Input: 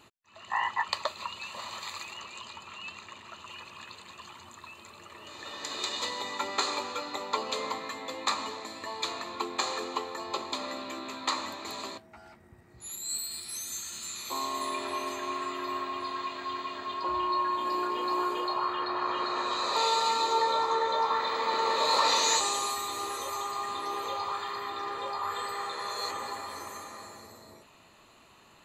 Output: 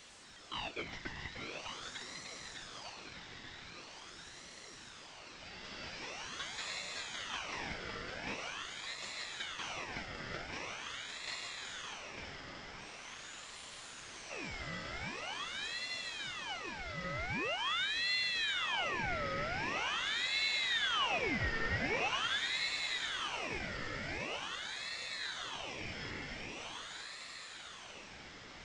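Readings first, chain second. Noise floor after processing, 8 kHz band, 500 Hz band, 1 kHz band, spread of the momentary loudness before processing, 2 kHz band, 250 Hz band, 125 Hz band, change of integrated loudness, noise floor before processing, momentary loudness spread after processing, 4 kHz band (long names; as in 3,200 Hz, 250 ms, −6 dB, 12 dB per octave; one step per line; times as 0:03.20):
−53 dBFS, −11.5 dB, −10.0 dB, −14.0 dB, 18 LU, +1.0 dB, −6.5 dB, can't be measured, −7.0 dB, −58 dBFS, 16 LU, −4.0 dB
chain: linear delta modulator 32 kbit/s, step −40 dBFS
echo machine with several playback heads 300 ms, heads all three, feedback 62%, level −8.5 dB
ring modulator whose carrier an LFO sweeps 2,000 Hz, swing 55%, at 0.44 Hz
level −7 dB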